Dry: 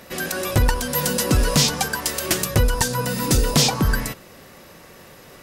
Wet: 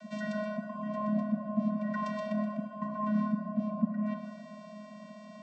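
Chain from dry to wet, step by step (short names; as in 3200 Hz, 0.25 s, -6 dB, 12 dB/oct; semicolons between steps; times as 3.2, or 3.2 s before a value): treble ducked by the level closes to 750 Hz, closed at -16.5 dBFS; reverse; compressor, threshold -27 dBFS, peak gain reduction 13 dB; reverse; vocoder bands 16, square 211 Hz; on a send: band shelf 810 Hz +13 dB + reverb RT60 2.0 s, pre-delay 7 ms, DRR 0 dB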